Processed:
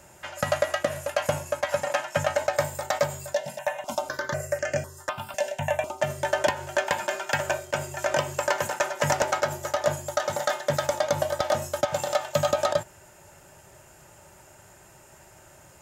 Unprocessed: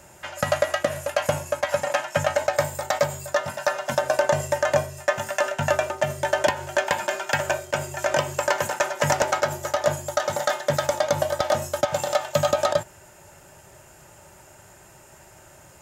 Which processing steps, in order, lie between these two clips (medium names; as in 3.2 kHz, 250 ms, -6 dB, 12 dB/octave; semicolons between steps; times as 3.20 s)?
3.34–6.01 s: stepped phaser 4 Hz 330–3700 Hz; trim -2.5 dB